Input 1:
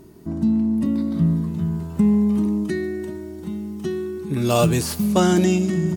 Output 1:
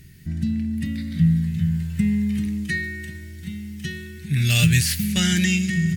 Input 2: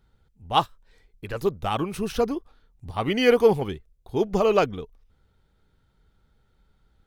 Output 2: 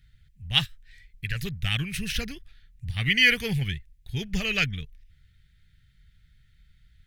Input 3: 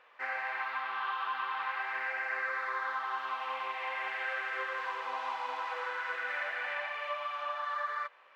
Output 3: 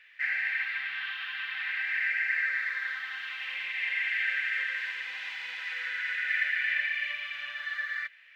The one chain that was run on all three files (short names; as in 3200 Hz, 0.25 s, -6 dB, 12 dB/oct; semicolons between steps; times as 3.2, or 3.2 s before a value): EQ curve 140 Hz 0 dB, 330 Hz -23 dB, 570 Hz -25 dB, 1100 Hz -27 dB, 1800 Hz +5 dB, 5700 Hz -2 dB; gain +6 dB